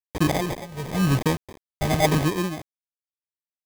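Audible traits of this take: phasing stages 8, 0.93 Hz, lowest notch 270–1400 Hz; a quantiser's noise floor 6-bit, dither none; tremolo triangle 1.1 Hz, depth 90%; aliases and images of a low sample rate 1.4 kHz, jitter 0%

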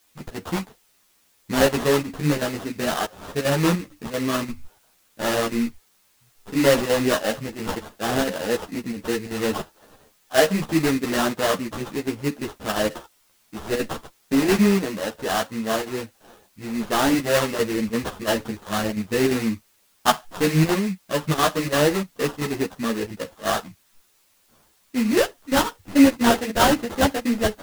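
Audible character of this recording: aliases and images of a low sample rate 2.3 kHz, jitter 20%; chopped level 2.9 Hz, depth 60%, duty 85%; a quantiser's noise floor 10-bit, dither triangular; a shimmering, thickened sound

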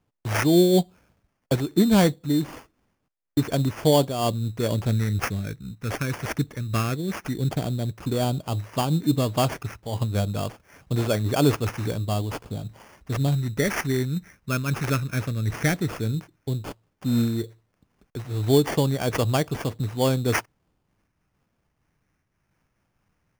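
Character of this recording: phasing stages 12, 0.12 Hz, lowest notch 750–4900 Hz; aliases and images of a low sample rate 3.9 kHz, jitter 0%; random flutter of the level

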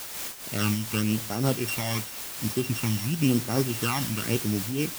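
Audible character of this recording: a buzz of ramps at a fixed pitch in blocks of 16 samples; phasing stages 12, 0.93 Hz, lowest notch 430–3200 Hz; a quantiser's noise floor 6-bit, dither triangular; random flutter of the level

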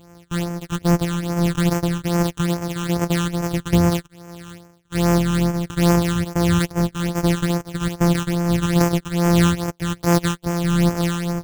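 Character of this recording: a buzz of ramps at a fixed pitch in blocks of 256 samples; phasing stages 8, 2.4 Hz, lowest notch 610–3800 Hz; tremolo triangle 1.4 Hz, depth 60%; AAC

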